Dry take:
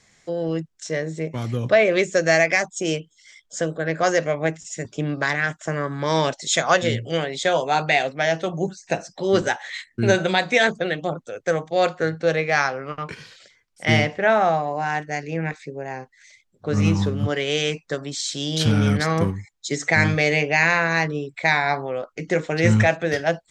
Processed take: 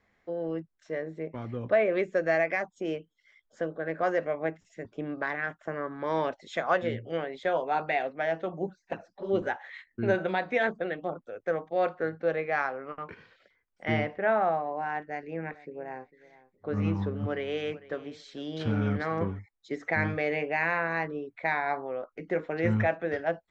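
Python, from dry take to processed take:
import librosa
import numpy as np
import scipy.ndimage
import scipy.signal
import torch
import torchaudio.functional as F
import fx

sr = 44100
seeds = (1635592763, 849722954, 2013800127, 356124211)

y = fx.env_flanger(x, sr, rest_ms=10.2, full_db=-16.0, at=(8.69, 9.41), fade=0.02)
y = fx.echo_feedback(y, sr, ms=450, feedback_pct=16, wet_db=-19, at=(14.99, 19.39))
y = scipy.signal.sosfilt(scipy.signal.butter(2, 1800.0, 'lowpass', fs=sr, output='sos'), y)
y = fx.peak_eq(y, sr, hz=140.0, db=-13.0, octaves=0.41)
y = F.gain(torch.from_numpy(y), -7.0).numpy()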